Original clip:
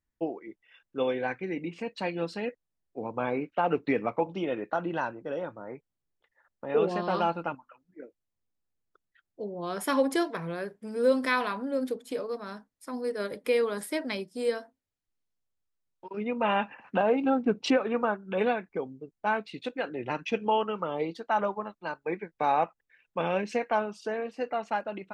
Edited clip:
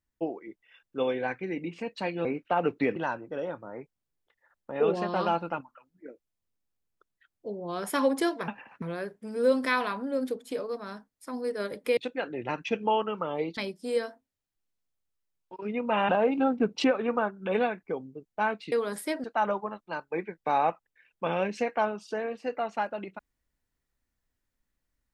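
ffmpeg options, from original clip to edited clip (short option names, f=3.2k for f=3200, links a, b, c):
-filter_complex "[0:a]asplit=10[a][b][c][d][e][f][g][h][i][j];[a]atrim=end=2.252[k];[b]atrim=start=3.318:end=4.032[l];[c]atrim=start=4.898:end=10.422[m];[d]atrim=start=16.608:end=16.952[n];[e]atrim=start=10.418:end=13.572[o];[f]atrim=start=19.578:end=21.182[p];[g]atrim=start=14.088:end=16.612[q];[h]atrim=start=16.948:end=19.582[r];[i]atrim=start=13.568:end=14.092[s];[j]atrim=start=21.178[t];[k][l]acrossfade=d=0.004:c1=hsin:c2=hsin[u];[u][m]acrossfade=d=0.004:c1=hsin:c2=hsin[v];[v][n]acrossfade=d=0.004:c1=hsin:c2=hsin[w];[w][o]acrossfade=d=0.004:c1=hsin:c2=hsin[x];[x][p]acrossfade=d=0.004:c1=hsin:c2=hsin[y];[y][q]acrossfade=d=0.004:c1=hsin:c2=hsin[z];[z][r]acrossfade=d=0.004:c1=hsin:c2=hsin[aa];[aa][s]acrossfade=d=0.004:c1=hsin:c2=hsin[ab];[ab][t]acrossfade=d=0.004:c1=hsin:c2=hsin"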